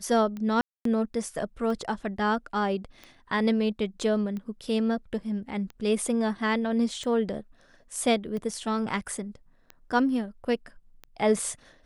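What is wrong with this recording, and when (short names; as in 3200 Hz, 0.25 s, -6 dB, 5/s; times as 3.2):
tick 45 rpm -25 dBFS
0.61–0.85 gap 0.243 s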